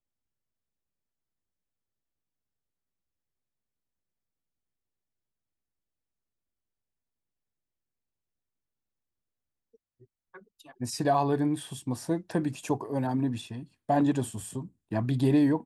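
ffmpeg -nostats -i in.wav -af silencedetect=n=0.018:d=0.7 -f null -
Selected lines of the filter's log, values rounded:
silence_start: 0.00
silence_end: 10.81 | silence_duration: 10.81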